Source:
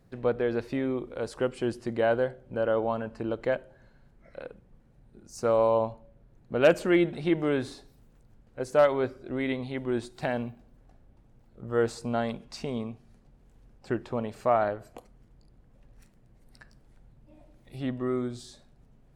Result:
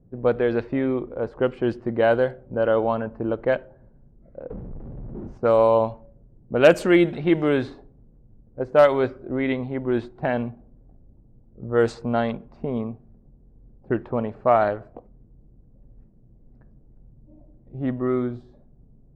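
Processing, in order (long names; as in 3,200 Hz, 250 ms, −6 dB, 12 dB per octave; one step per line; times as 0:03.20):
0:04.50–0:05.38: power curve on the samples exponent 0.35
low-pass that shuts in the quiet parts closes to 400 Hz, open at −19.5 dBFS
level +6 dB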